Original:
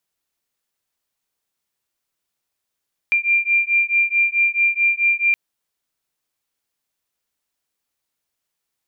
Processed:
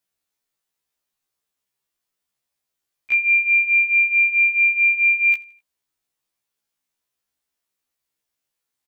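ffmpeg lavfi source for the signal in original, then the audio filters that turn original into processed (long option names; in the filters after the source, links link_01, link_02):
-f lavfi -i "aevalsrc='0.126*(sin(2*PI*2380*t)+sin(2*PI*2384.6*t))':duration=2.22:sample_rate=44100"
-af "aecho=1:1:83|166|249:0.0708|0.0304|0.0131,afftfilt=real='re*1.73*eq(mod(b,3),0)':imag='im*1.73*eq(mod(b,3),0)':win_size=2048:overlap=0.75"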